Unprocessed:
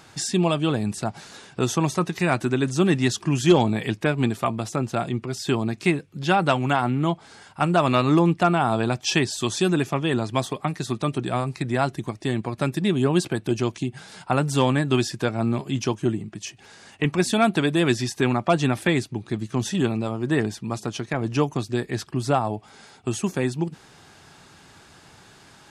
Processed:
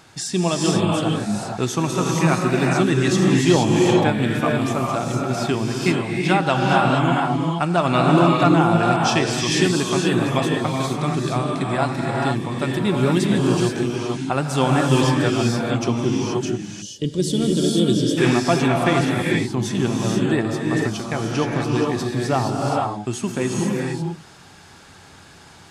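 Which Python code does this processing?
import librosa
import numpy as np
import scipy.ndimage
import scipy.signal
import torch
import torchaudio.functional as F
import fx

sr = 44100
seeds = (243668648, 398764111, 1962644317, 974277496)

y = fx.rev_gated(x, sr, seeds[0], gate_ms=500, shape='rising', drr_db=-2.0)
y = fx.spec_box(y, sr, start_s=16.82, length_s=1.35, low_hz=620.0, high_hz=2800.0, gain_db=-19)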